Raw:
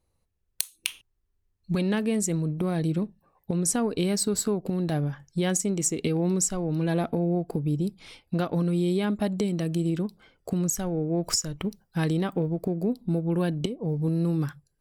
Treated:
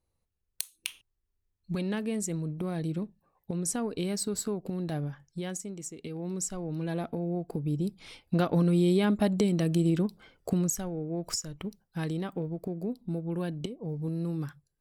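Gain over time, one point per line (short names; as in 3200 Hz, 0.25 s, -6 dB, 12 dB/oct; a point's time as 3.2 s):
5.05 s -6 dB
5.94 s -15 dB
6.51 s -7 dB
7.22 s -7 dB
8.45 s +1 dB
10.49 s +1 dB
10.94 s -7 dB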